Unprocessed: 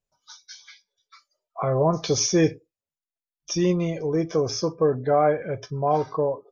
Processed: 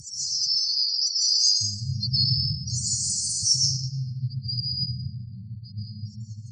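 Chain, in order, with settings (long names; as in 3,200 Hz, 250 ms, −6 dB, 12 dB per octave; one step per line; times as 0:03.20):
linear delta modulator 64 kbit/s, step −27.5 dBFS
source passing by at 0:02.25, 5 m/s, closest 3.8 metres
leveller curve on the samples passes 5
downward compressor 12 to 1, threshold −19 dBFS, peak gain reduction 7.5 dB
high-pass filter 110 Hz 24 dB per octave
low-shelf EQ 200 Hz −10 dB
spectral peaks only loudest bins 32
high-shelf EQ 4,600 Hz +7 dB
comb and all-pass reverb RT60 2.6 s, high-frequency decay 0.55×, pre-delay 100 ms, DRR −5 dB
phase-vocoder pitch shift with formants kept −4.5 semitones
linear-phase brick-wall band-stop 200–4,200 Hz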